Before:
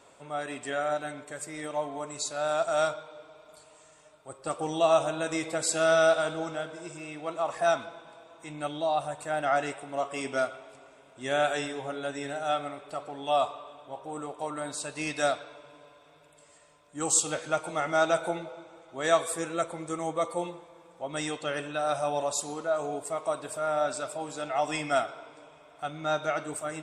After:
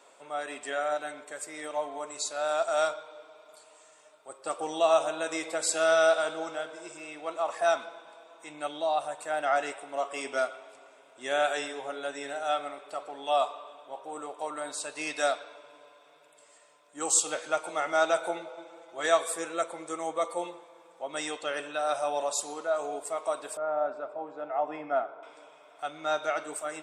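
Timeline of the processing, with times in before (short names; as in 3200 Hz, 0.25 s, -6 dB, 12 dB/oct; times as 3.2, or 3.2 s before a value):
18.57–19.06 comb 5.9 ms, depth 67%
23.57–25.23 LPF 1100 Hz
whole clip: HPF 380 Hz 12 dB/oct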